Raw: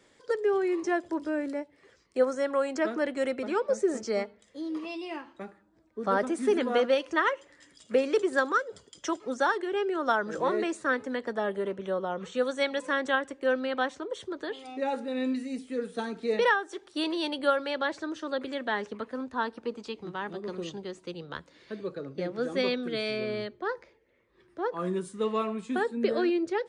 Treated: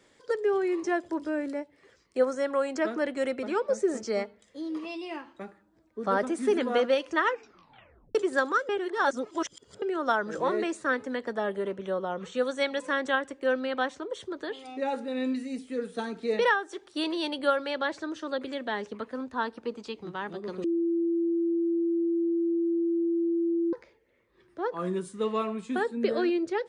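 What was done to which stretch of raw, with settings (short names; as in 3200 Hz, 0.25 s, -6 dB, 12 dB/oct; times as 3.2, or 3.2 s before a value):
7.25 tape stop 0.90 s
8.69–9.82 reverse
18.36–18.93 dynamic EQ 1400 Hz, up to -4 dB, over -42 dBFS, Q 1.1
20.64–23.73 bleep 337 Hz -23.5 dBFS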